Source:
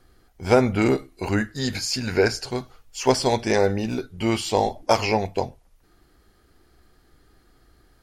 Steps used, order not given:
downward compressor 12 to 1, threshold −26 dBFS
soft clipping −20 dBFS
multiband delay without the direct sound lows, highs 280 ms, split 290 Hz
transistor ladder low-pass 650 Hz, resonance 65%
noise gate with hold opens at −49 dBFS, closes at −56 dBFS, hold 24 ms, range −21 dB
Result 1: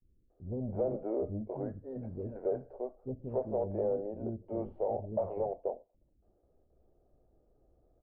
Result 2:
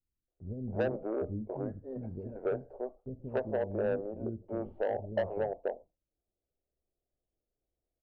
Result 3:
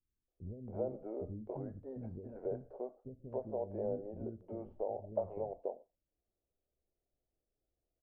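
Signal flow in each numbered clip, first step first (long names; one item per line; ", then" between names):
noise gate with hold, then multiband delay without the direct sound, then soft clipping, then transistor ladder low-pass, then downward compressor
transistor ladder low-pass, then soft clipping, then downward compressor, then multiband delay without the direct sound, then noise gate with hold
downward compressor, then soft clipping, then transistor ladder low-pass, then noise gate with hold, then multiband delay without the direct sound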